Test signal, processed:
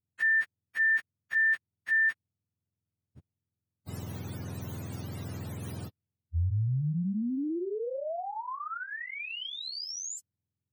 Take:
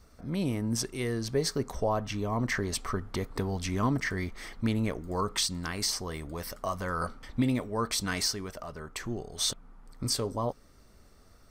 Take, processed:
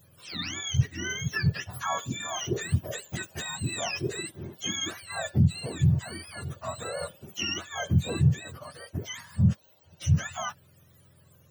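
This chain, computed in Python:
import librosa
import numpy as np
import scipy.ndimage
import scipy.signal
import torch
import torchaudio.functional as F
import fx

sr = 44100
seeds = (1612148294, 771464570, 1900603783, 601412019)

y = fx.octave_mirror(x, sr, pivot_hz=850.0)
y = fx.high_shelf(y, sr, hz=8700.0, db=4.0)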